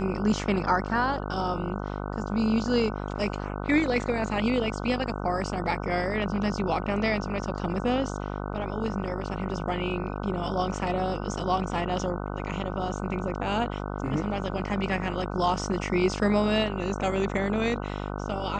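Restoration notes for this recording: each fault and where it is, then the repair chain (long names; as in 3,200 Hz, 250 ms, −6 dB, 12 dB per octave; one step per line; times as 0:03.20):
mains buzz 50 Hz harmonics 30 −33 dBFS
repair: hum removal 50 Hz, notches 30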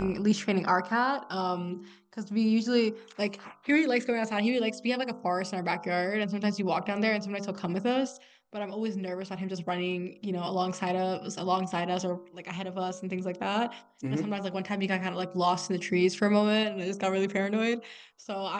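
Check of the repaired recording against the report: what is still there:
none of them is left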